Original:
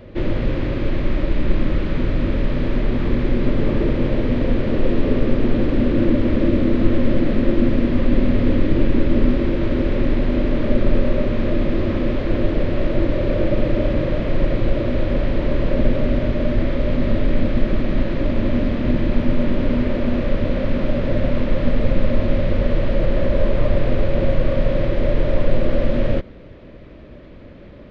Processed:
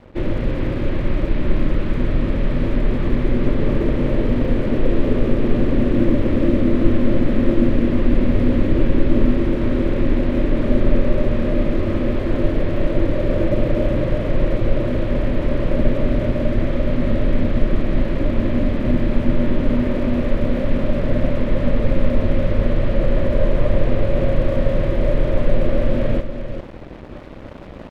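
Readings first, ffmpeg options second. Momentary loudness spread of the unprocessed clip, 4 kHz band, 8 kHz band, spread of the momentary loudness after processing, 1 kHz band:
4 LU, -2.0 dB, no reading, 5 LU, +0.5 dB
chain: -af "lowpass=f=3700:p=1,aecho=1:1:397:0.376,aeval=exprs='sgn(val(0))*max(abs(val(0))-0.0075,0)':c=same,areverse,acompressor=mode=upward:threshold=0.0708:ratio=2.5,areverse"

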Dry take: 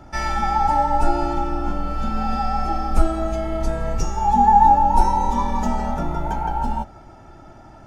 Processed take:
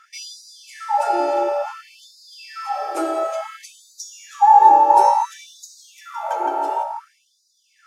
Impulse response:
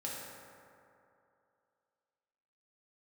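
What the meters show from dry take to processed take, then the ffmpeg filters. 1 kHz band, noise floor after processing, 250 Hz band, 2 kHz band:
+2.0 dB, -64 dBFS, -8.0 dB, -2.0 dB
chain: -filter_complex "[0:a]asplit=2[s0][s1];[s1]equalizer=f=125:t=o:w=1:g=9,equalizer=f=250:t=o:w=1:g=-6,equalizer=f=500:t=o:w=1:g=6,equalizer=f=1000:t=o:w=1:g=-5,equalizer=f=4000:t=o:w=1:g=-5[s2];[1:a]atrim=start_sample=2205,asetrate=30870,aresample=44100[s3];[s2][s3]afir=irnorm=-1:irlink=0,volume=0.794[s4];[s0][s4]amix=inputs=2:normalize=0,afftfilt=real='re*gte(b*sr/1024,270*pow(3700/270,0.5+0.5*sin(2*PI*0.57*pts/sr)))':imag='im*gte(b*sr/1024,270*pow(3700/270,0.5+0.5*sin(2*PI*0.57*pts/sr)))':win_size=1024:overlap=0.75,volume=0.891"

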